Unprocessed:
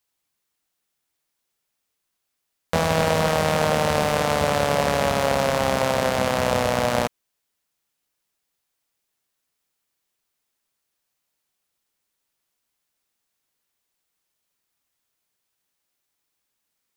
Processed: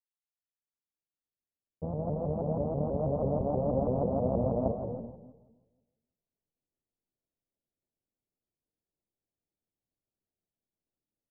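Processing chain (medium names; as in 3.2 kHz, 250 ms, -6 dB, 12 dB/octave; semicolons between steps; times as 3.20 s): fade-in on the opening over 5.64 s; tempo 1.5×; Gaussian low-pass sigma 15 samples; on a send at -4 dB: reverberation RT60 1.2 s, pre-delay 115 ms; on the sum: vibrato with a chosen wave saw up 6.2 Hz, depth 160 cents; trim -2.5 dB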